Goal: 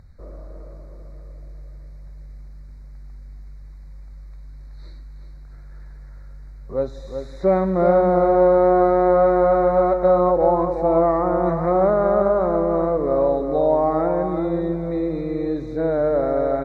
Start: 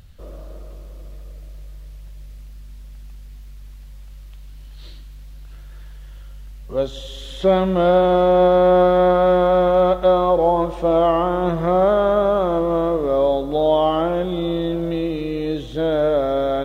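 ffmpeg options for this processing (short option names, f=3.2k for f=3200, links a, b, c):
-filter_complex "[0:a]asuperstop=centerf=3000:order=12:qfactor=2.1,aemphasis=mode=reproduction:type=75kf,asplit=2[a][b];[b]adelay=373.2,volume=-7dB,highshelf=f=4k:g=-8.4[c];[a][c]amix=inputs=2:normalize=0,volume=-1.5dB"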